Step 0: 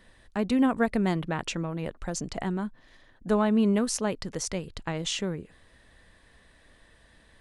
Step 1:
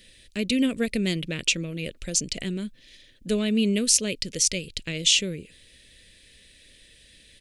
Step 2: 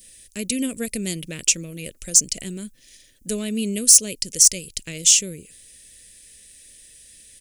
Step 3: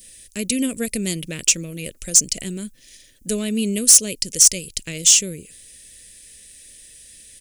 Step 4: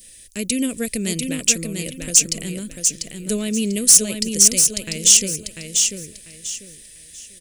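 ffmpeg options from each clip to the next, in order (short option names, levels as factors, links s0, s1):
-af "firequalizer=gain_entry='entry(550,0);entry(810,-22);entry(2400,12)':delay=0.05:min_phase=1"
-af "aexciter=amount=5.4:drive=6.4:freq=5500,apsyclip=1.26,adynamicequalizer=threshold=0.0158:dfrequency=1500:dqfactor=0.96:tfrequency=1500:tqfactor=0.96:attack=5:release=100:ratio=0.375:range=2.5:mode=cutabove:tftype=bell,volume=0.596"
-af "asoftclip=type=tanh:threshold=0.501,volume=1.41"
-af "aecho=1:1:694|1388|2082|2776:0.562|0.152|0.041|0.0111"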